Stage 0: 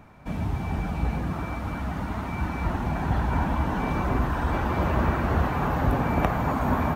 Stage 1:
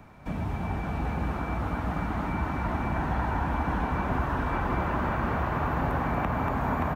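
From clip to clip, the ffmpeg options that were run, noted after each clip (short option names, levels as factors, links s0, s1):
-filter_complex "[0:a]asplit=2[s0][s1];[s1]aecho=0:1:235:0.531[s2];[s0][s2]amix=inputs=2:normalize=0,acrossover=split=310|720|2600[s3][s4][s5][s6];[s3]acompressor=threshold=0.0355:ratio=4[s7];[s4]acompressor=threshold=0.0112:ratio=4[s8];[s5]acompressor=threshold=0.0282:ratio=4[s9];[s6]acompressor=threshold=0.00126:ratio=4[s10];[s7][s8][s9][s10]amix=inputs=4:normalize=0,asplit=2[s11][s12];[s12]aecho=0:1:575:0.562[s13];[s11][s13]amix=inputs=2:normalize=0"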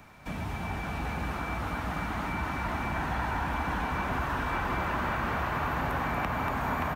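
-af "tiltshelf=f=1400:g=-6,asoftclip=type=tanh:threshold=0.0944,volume=1.19"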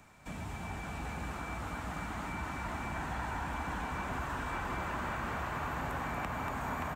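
-af "equalizer=f=7600:w=2.5:g=10.5,volume=0.473"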